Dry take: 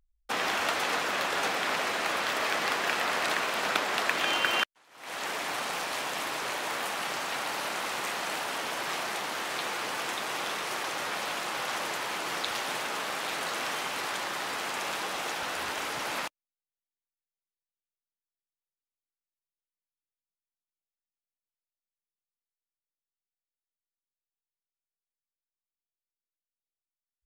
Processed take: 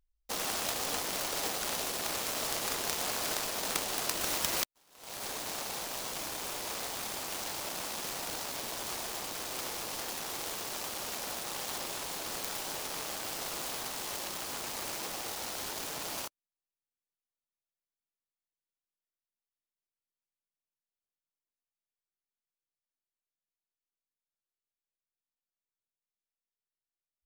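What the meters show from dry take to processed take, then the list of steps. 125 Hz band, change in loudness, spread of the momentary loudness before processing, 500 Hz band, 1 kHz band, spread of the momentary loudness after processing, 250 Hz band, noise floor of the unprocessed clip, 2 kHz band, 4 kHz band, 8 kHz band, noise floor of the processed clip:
0.0 dB, -4.0 dB, 5 LU, -6.0 dB, -9.0 dB, 5 LU, -4.0 dB, under -85 dBFS, -11.0 dB, -4.5 dB, +3.0 dB, under -85 dBFS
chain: delay time shaken by noise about 4.4 kHz, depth 0.17 ms; trim -5 dB

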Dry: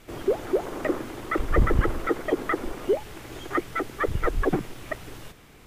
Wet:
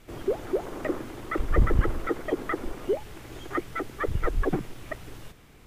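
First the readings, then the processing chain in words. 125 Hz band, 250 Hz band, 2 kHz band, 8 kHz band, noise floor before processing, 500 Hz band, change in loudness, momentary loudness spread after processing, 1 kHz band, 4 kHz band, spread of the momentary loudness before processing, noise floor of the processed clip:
-0.5 dB, -3.0 dB, -4.0 dB, -4.0 dB, -51 dBFS, -3.5 dB, -2.5 dB, 14 LU, -4.0 dB, -4.0 dB, 12 LU, -52 dBFS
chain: bass shelf 180 Hz +4.5 dB; trim -4 dB

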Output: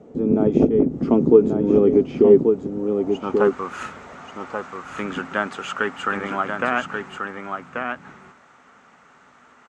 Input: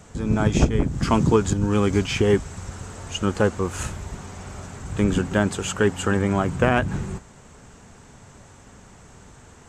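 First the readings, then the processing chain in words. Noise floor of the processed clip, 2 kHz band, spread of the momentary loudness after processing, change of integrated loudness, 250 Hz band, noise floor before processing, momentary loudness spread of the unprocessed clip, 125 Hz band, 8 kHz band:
-53 dBFS, +1.5 dB, 17 LU, +2.0 dB, +2.5 dB, -48 dBFS, 16 LU, -8.0 dB, under -10 dB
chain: band-pass sweep 410 Hz -> 1.4 kHz, 2.68–3.58 s; in parallel at -0.5 dB: gain riding within 4 dB 0.5 s; on the sum: graphic EQ with 31 bands 100 Hz -6 dB, 160 Hz +4 dB, 250 Hz +9 dB, 1 kHz -5 dB, 1.6 kHz -8 dB, 8 kHz -4 dB; delay 1135 ms -5.5 dB; trim +3 dB

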